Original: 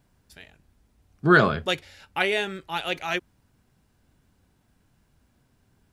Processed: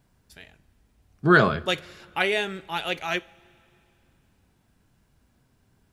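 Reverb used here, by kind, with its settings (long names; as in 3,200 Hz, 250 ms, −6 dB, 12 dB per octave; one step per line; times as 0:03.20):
coupled-rooms reverb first 0.31 s, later 2.8 s, from −18 dB, DRR 15.5 dB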